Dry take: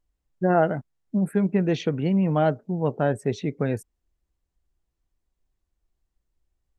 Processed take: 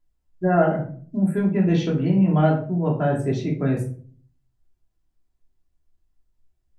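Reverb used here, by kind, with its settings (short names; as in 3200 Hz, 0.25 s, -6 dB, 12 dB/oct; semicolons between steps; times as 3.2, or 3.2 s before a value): shoebox room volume 380 m³, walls furnished, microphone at 3 m; gain -4 dB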